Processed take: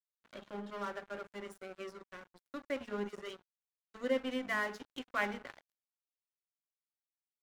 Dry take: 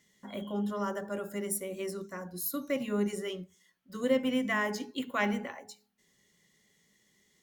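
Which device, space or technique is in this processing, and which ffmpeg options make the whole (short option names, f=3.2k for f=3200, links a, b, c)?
pocket radio on a weak battery: -af "highpass=260,lowpass=4.4k,aeval=exprs='sgn(val(0))*max(abs(val(0))-0.00794,0)':c=same,equalizer=f=1.5k:t=o:w=0.5:g=4.5,volume=-3.5dB"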